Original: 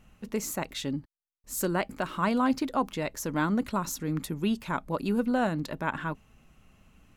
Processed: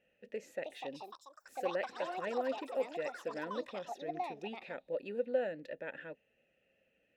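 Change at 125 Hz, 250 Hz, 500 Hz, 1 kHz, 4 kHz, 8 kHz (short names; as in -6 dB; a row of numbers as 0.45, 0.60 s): -23.5 dB, -18.5 dB, -3.0 dB, -10.0 dB, -11.0 dB, under -20 dB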